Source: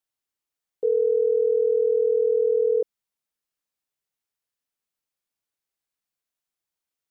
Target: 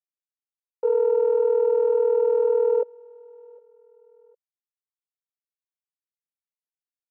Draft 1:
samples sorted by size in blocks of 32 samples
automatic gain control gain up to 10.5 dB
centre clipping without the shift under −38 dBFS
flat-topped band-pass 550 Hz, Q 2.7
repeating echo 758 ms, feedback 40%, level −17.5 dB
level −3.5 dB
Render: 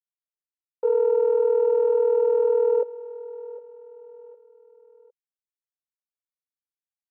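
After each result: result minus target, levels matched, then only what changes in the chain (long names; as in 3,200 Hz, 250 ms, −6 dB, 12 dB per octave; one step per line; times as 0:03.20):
centre clipping without the shift: distortion −14 dB; echo-to-direct +9.5 dB
change: centre clipping without the shift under −26.5 dBFS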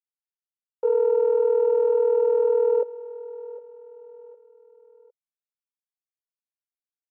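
echo-to-direct +9.5 dB
change: repeating echo 758 ms, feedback 40%, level −27 dB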